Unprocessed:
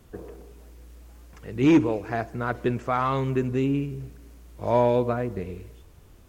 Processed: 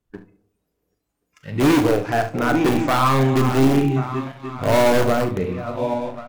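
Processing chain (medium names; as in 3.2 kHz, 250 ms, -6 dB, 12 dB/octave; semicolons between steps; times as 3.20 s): backward echo that repeats 540 ms, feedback 60%, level -11 dB; spectral noise reduction 21 dB; waveshaping leveller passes 2; in parallel at -9 dB: integer overflow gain 13 dB; on the sum: hum notches 60/120 Hz; 2.42–4.03 s: whistle 790 Hz -33 dBFS; early reflections 38 ms -11 dB, 71 ms -14 dB; on a send at -12.5 dB: reverberation RT60 0.50 s, pre-delay 7 ms; on the sum: trim -1.5 dB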